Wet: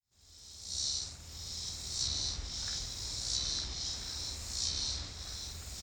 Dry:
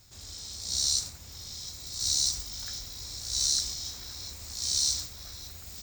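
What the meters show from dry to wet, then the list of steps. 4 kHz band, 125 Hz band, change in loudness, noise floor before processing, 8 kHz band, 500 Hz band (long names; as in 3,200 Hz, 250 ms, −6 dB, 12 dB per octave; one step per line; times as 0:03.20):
−4.5 dB, +0.5 dB, −6.5 dB, −47 dBFS, −8.5 dB, +0.5 dB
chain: fade in at the beginning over 1.87 s
double-tracking delay 49 ms −4 dB
treble cut that deepens with the level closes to 2,900 Hz, closed at −25 dBFS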